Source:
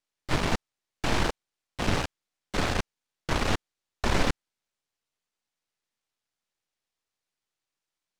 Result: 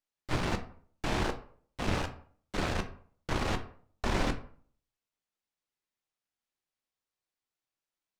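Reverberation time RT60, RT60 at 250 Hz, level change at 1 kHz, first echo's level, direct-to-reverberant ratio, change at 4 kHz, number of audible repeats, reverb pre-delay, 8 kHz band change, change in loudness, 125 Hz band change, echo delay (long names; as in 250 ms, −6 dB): 0.50 s, 0.50 s, −4.5 dB, no echo audible, 6.5 dB, −6.5 dB, no echo audible, 9 ms, −7.0 dB, −4.5 dB, −3.5 dB, no echo audible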